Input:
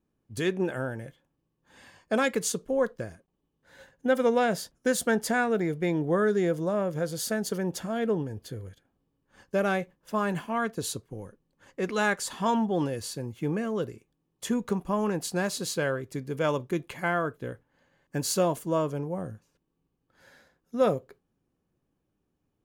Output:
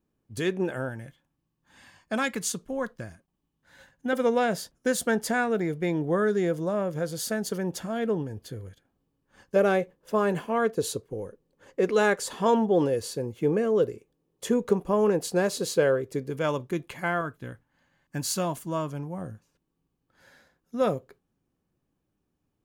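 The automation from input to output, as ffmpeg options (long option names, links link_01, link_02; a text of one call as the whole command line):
ffmpeg -i in.wav -af "asetnsamples=nb_out_samples=441:pad=0,asendcmd='0.89 equalizer g -8.5;4.13 equalizer g 0;9.56 equalizer g 10;16.3 equalizer g -1;17.21 equalizer g -9;19.21 equalizer g -2',equalizer=frequency=460:width_type=o:width=0.76:gain=0.5" out.wav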